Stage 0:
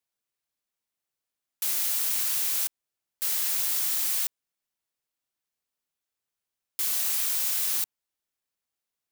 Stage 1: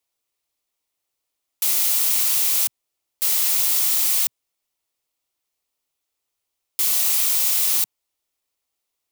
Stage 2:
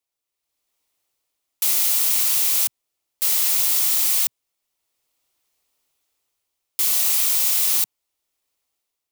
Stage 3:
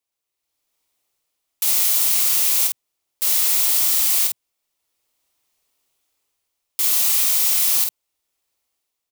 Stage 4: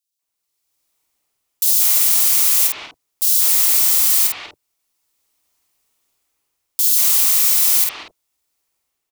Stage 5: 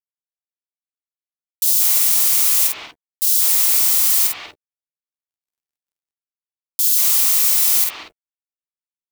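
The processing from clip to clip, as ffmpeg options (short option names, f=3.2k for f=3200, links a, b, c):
-af "equalizer=f=125:t=o:w=0.33:g=-7,equalizer=f=200:t=o:w=0.33:g=-12,equalizer=f=1.6k:t=o:w=0.33:g=-8,volume=7.5dB"
-af "dynaudnorm=f=140:g=9:m=13dB,volume=-5.5dB"
-filter_complex "[0:a]asplit=2[a][b];[b]adelay=49,volume=-4dB[c];[a][c]amix=inputs=2:normalize=0"
-filter_complex "[0:a]acrossover=split=560|3200[a][b][c];[b]adelay=190[d];[a]adelay=220[e];[e][d][c]amix=inputs=3:normalize=0,volume=3.5dB"
-filter_complex "[0:a]acrusher=bits=8:mix=0:aa=0.5,asplit=2[a][b];[b]adelay=13,volume=-12.5dB[c];[a][c]amix=inputs=2:normalize=0,volume=-1dB"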